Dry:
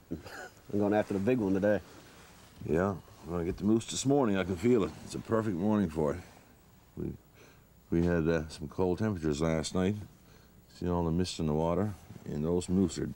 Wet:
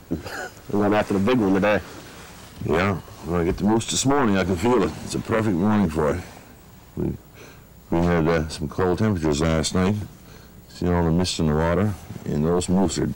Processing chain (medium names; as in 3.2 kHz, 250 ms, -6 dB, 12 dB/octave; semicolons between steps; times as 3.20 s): 1.28–3.60 s: dynamic bell 1.7 kHz, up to +5 dB, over -45 dBFS, Q 1; sine folder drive 9 dB, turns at -14 dBFS